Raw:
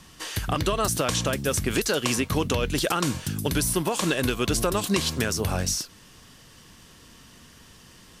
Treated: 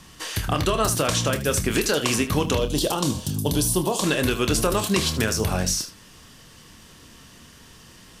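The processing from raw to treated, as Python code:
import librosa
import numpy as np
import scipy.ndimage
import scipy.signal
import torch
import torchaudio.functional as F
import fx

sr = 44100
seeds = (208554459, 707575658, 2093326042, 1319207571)

y = fx.band_shelf(x, sr, hz=1800.0, db=-12.0, octaves=1.2, at=(2.57, 4.04))
y = fx.room_early_taps(y, sr, ms=(27, 77), db=(-9.5, -13.5))
y = y * 10.0 ** (2.0 / 20.0)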